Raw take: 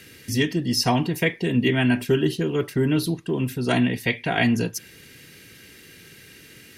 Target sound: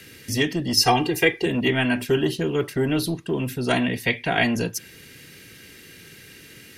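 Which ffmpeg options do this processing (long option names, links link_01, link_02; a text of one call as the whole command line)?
ffmpeg -i in.wav -filter_complex "[0:a]asettb=1/sr,asplit=3[link_01][link_02][link_03];[link_01]atrim=end=0.774[link_04];[link_02]atrim=start=0.77:end=1.46,asetpts=PTS-STARTPTS,afade=type=in:duration=0.004:curve=qsin,afade=type=out:start_time=0.686:duration=0.004:curve=qsin,aecho=1:1:2.5:0.99,atrim=end_sample=30429[link_05];[link_03]atrim=start=1.456[link_06];[link_04][link_05]acrossfade=duration=0.004:curve1=hsin:curve2=qsin[link_07];[link_07][link_06]acrossfade=duration=0.004:curve1=qsin:curve2=hsin,acrossover=split=330|540|5400[link_08][link_09][link_10][link_11];[link_08]asoftclip=type=tanh:threshold=-25.5dB[link_12];[link_12][link_09][link_10][link_11]amix=inputs=4:normalize=0,volume=1.5dB" out.wav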